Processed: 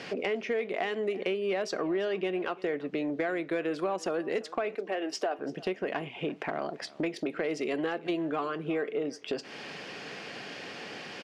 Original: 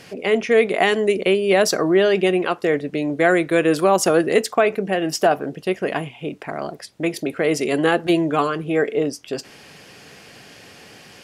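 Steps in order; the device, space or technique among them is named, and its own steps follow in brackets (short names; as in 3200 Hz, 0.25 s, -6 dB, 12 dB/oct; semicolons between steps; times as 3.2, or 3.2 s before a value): AM radio (BPF 200–4300 Hz; compressor 5:1, threshold -33 dBFS, peak gain reduction 19.5 dB; soft clip -22 dBFS, distortion -25 dB); 4.75–5.39 HPF 290 Hz 24 dB/oct; echo 0.341 s -21 dB; gain +3.5 dB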